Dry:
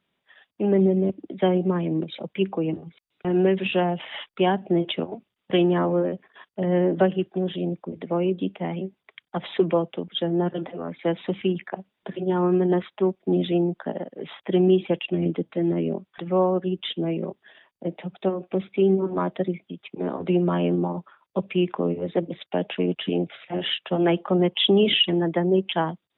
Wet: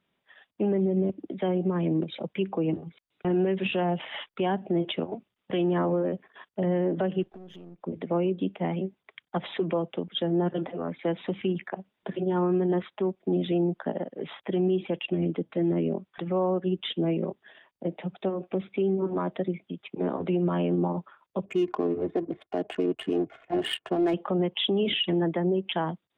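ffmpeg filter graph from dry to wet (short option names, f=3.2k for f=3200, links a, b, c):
-filter_complex "[0:a]asettb=1/sr,asplit=3[a][b][c];[a]atrim=end=7.234[d];[b]atrim=start=7.23:end=7.82,asetpts=PTS-STARTPTS,afade=t=in:d=0.004:c=qsin,afade=t=out:st=0.586:d=0.004:c=qsin,aeval=exprs='if(lt(val(0),0),0.447*val(0),val(0))':c=same,acompressor=threshold=-41dB:ratio=12:attack=3.2:release=140:knee=1:detection=peak[e];[c]atrim=start=7.816[f];[d][e]acrossfade=d=0.004:c1=hsin:c2=qsin[g];[g][f]acrossfade=d=0.004:c1=qsin:c2=hsin,asettb=1/sr,asplit=3[h][i][j];[h]atrim=end=21.454[k];[i]atrim=start=21.45:end=24.14,asetpts=PTS-STARTPTS,afade=t=in:d=0.004:c=qsin,afade=t=out:st=2.686:d=0.004:c=qsin,highshelf=f=2.8k:g=-6,aecho=1:1:2.8:0.58,atrim=end_sample=118629,adynamicsmooth=sensitivity=4:basefreq=1.1k[l];[j]atrim=start=24.136[m];[k][l]acrossfade=d=0.004:c1=hsin:c2=qsin[n];[n][m]acrossfade=d=0.004:c1=qsin:c2=hsin,highshelf=f=3.2k:g=-5,alimiter=limit=-18dB:level=0:latency=1:release=136"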